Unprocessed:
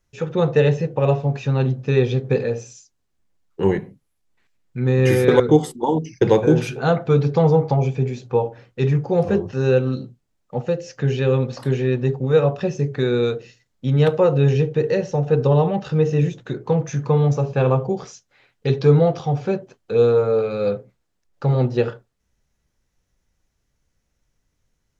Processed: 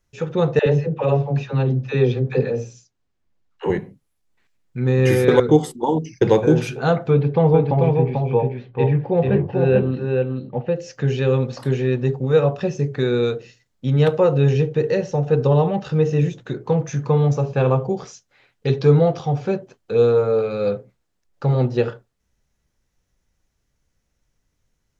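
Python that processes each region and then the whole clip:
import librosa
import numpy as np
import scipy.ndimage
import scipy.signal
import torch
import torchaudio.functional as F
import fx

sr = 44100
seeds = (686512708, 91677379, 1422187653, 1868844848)

y = fx.chain(x, sr, fx.air_absorb(metres=81.0),
    fx.dispersion(late='lows', ms=74.0, hz=490.0), at=(0.59, 3.7))
y = fx.chain(y, sr, fx.lowpass(hz=3200.0, slope=24),
    fx.peak_eq(hz=1300.0, db=-7.5, octaves=0.23),
    fx.echo_single(ms=440, db=-3.5), at=(7.1, 10.76))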